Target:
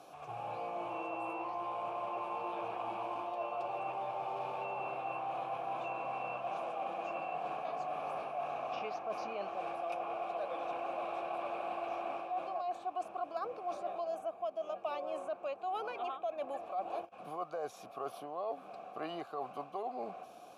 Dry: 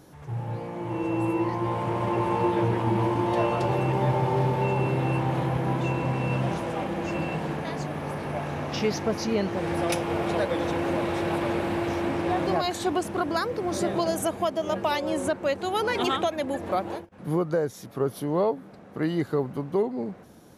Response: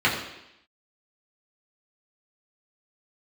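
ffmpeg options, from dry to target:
-filter_complex "[0:a]acrossover=split=610|2100[a][b][c];[a]acompressor=threshold=-32dB:ratio=4[d];[b]acompressor=threshold=-33dB:ratio=4[e];[c]acompressor=threshold=-52dB:ratio=4[f];[d][e][f]amix=inputs=3:normalize=0,asplit=3[g][h][i];[g]bandpass=f=730:t=q:w=8,volume=0dB[j];[h]bandpass=f=1.09k:t=q:w=8,volume=-6dB[k];[i]bandpass=f=2.44k:t=q:w=8,volume=-9dB[l];[j][k][l]amix=inputs=3:normalize=0,crystalizer=i=4:c=0,areverse,acompressor=threshold=-46dB:ratio=6,areverse,volume=10dB"

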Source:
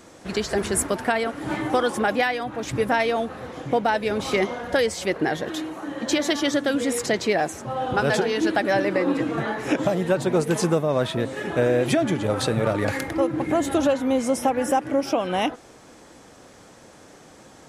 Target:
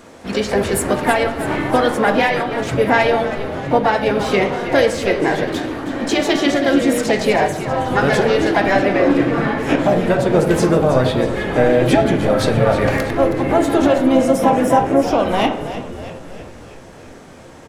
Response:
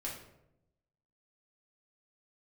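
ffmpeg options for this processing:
-filter_complex "[0:a]asplit=8[a][b][c][d][e][f][g][h];[b]adelay=321,afreqshift=-64,volume=-12dB[i];[c]adelay=642,afreqshift=-128,volume=-16.4dB[j];[d]adelay=963,afreqshift=-192,volume=-20.9dB[k];[e]adelay=1284,afreqshift=-256,volume=-25.3dB[l];[f]adelay=1605,afreqshift=-320,volume=-29.7dB[m];[g]adelay=1926,afreqshift=-384,volume=-34.2dB[n];[h]adelay=2247,afreqshift=-448,volume=-38.6dB[o];[a][i][j][k][l][m][n][o]amix=inputs=8:normalize=0,asplit=2[p][q];[1:a]atrim=start_sample=2205,lowpass=4.4k[r];[q][r]afir=irnorm=-1:irlink=0,volume=0dB[s];[p][s]amix=inputs=2:normalize=0,asplit=2[t][u];[u]asetrate=55563,aresample=44100,atempo=0.793701,volume=-8dB[v];[t][v]amix=inputs=2:normalize=0,volume=1dB"

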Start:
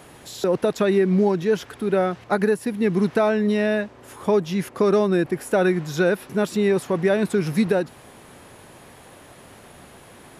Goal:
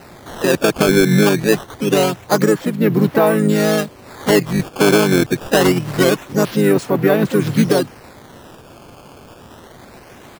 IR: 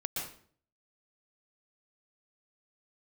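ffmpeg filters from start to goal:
-filter_complex "[0:a]asplit=3[a][b][c];[b]asetrate=33038,aresample=44100,atempo=1.33484,volume=-4dB[d];[c]asetrate=55563,aresample=44100,atempo=0.793701,volume=-11dB[e];[a][d][e]amix=inputs=3:normalize=0,acrusher=samples=13:mix=1:aa=0.000001:lfo=1:lforange=20.8:lforate=0.25,volume=4dB"

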